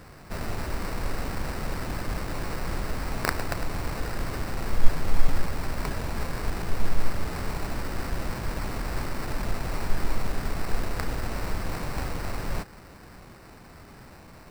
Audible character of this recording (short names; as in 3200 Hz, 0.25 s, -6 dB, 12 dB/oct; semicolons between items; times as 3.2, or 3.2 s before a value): aliases and images of a low sample rate 3300 Hz, jitter 0%